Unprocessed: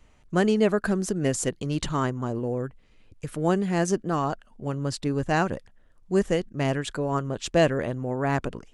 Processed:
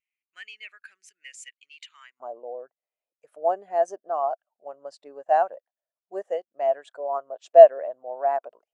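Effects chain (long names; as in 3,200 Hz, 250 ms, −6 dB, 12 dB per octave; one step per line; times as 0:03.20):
high-pass with resonance 2,300 Hz, resonance Q 3.6, from 0:02.20 660 Hz
every bin expanded away from the loudest bin 1.5 to 1
level +2 dB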